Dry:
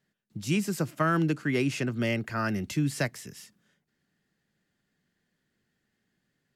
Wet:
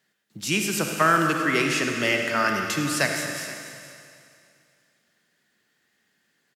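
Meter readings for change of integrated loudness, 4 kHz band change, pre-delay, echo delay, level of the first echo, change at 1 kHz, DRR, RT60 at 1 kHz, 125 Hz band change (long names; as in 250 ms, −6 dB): +5.5 dB, +11.0 dB, 39 ms, 101 ms, −13.0 dB, +9.5 dB, 2.5 dB, 2.5 s, −3.0 dB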